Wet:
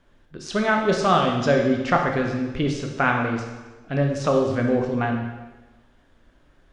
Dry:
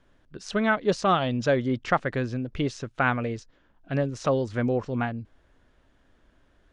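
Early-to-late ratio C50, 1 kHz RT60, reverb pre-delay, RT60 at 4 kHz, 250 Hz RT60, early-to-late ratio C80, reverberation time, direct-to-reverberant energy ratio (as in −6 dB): 4.0 dB, 1.2 s, 6 ms, 1.1 s, 1.3 s, 6.0 dB, 1.2 s, 1.5 dB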